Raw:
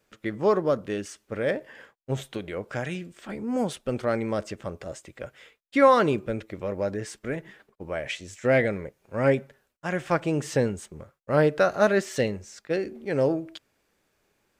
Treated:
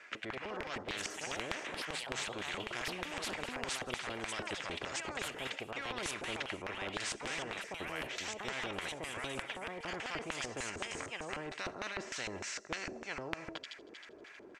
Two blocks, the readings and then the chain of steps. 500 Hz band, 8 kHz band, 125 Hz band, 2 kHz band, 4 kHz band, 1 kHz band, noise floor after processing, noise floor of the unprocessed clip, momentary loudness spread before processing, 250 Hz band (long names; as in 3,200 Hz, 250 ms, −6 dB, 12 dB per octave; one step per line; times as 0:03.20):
−19.0 dB, 0.0 dB, −19.0 dB, −6.0 dB, +1.5 dB, −12.5 dB, −54 dBFS, −73 dBFS, 16 LU, −17.5 dB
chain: Chebyshev low-pass filter 6,900 Hz, order 2
parametric band 3,700 Hz −5.5 dB 1.1 octaves
comb filter 3 ms, depth 35%
reversed playback
downward compressor 6 to 1, threshold −36 dBFS, peak gain reduction 20 dB
reversed playback
delay with a high-pass on its return 79 ms, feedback 80%, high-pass 4,900 Hz, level −9.5 dB
auto-filter band-pass square 3.3 Hz 380–2,000 Hz
delay with pitch and tempo change per echo 122 ms, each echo +3 semitones, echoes 2, each echo −6 dB
every bin compressed towards the loudest bin 4 to 1
level +12.5 dB